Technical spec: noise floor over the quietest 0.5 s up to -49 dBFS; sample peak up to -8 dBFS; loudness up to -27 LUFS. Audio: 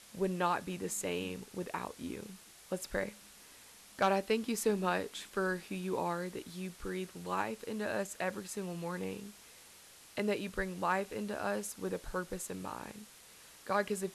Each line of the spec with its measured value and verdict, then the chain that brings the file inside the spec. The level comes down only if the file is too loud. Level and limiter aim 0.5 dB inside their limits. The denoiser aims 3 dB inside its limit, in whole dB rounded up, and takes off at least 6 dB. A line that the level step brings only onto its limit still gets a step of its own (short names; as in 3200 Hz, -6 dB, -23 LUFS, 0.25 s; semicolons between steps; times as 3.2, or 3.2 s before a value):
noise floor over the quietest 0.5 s -57 dBFS: OK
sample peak -19.5 dBFS: OK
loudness -37.0 LUFS: OK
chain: none